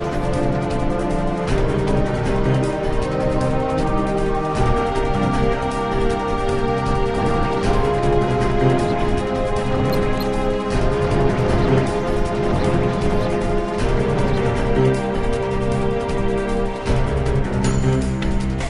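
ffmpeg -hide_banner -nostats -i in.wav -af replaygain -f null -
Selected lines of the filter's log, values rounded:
track_gain = +3.4 dB
track_peak = 0.400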